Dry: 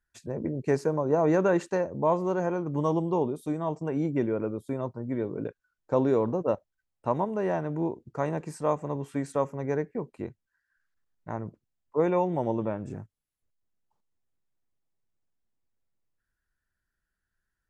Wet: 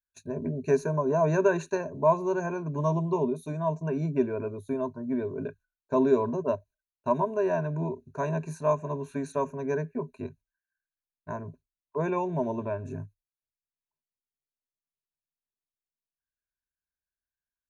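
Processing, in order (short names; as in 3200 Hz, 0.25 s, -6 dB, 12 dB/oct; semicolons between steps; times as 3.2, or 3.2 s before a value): gate -51 dBFS, range -17 dB; ripple EQ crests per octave 1.5, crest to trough 17 dB; gain -3.5 dB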